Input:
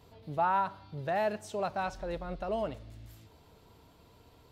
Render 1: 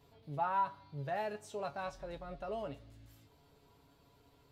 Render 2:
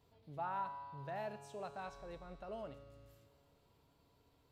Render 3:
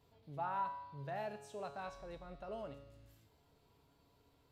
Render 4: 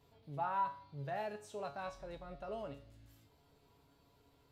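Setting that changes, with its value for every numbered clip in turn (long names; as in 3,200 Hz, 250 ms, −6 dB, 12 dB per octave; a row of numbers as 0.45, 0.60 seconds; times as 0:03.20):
tuned comb filter, decay: 0.15, 2.1, 1, 0.4 seconds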